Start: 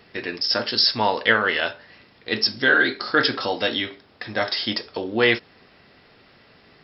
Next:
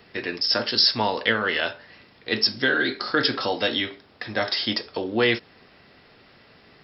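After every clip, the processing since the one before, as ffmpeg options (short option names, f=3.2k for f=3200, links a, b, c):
-filter_complex "[0:a]acrossover=split=410|3000[a][b][c];[b]acompressor=threshold=-21dB:ratio=6[d];[a][d][c]amix=inputs=3:normalize=0"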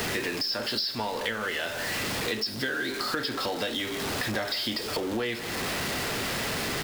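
-filter_complex "[0:a]aeval=exprs='val(0)+0.5*0.0596*sgn(val(0))':c=same,asplit=2[a][b];[b]adelay=163.3,volume=-17dB,highshelf=f=4k:g=-3.67[c];[a][c]amix=inputs=2:normalize=0,acompressor=threshold=-28dB:ratio=6"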